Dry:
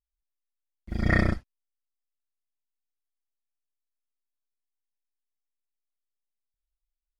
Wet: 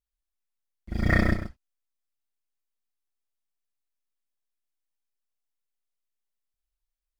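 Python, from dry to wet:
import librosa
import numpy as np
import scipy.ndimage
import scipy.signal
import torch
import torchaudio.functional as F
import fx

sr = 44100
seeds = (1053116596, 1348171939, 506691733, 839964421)

y = fx.law_mismatch(x, sr, coded='mu', at=(0.95, 1.36))
y = y + 10.0 ** (-9.5 / 20.0) * np.pad(y, (int(132 * sr / 1000.0), 0))[:len(y)]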